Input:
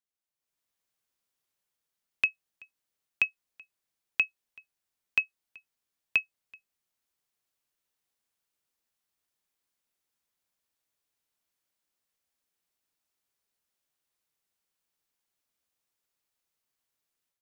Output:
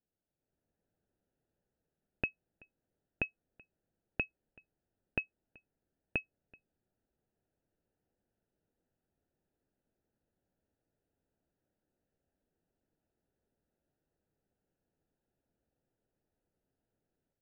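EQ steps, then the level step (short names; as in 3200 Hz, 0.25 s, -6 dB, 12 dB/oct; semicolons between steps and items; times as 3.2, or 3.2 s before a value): running mean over 40 samples; air absorption 450 m; +15.0 dB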